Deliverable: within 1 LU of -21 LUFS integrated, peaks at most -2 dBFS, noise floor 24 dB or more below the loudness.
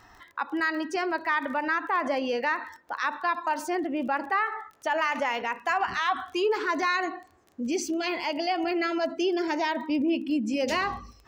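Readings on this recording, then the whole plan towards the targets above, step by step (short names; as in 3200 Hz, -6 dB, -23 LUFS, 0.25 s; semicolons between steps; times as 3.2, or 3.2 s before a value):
ticks 20/s; loudness -28.0 LUFS; peak -15.0 dBFS; loudness target -21.0 LUFS
-> de-click; gain +7 dB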